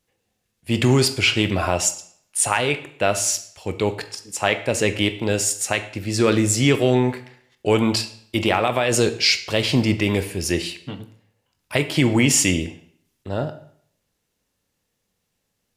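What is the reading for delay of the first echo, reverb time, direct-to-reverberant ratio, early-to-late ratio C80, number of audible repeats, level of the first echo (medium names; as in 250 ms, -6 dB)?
no echo, 0.60 s, 9.0 dB, 16.0 dB, no echo, no echo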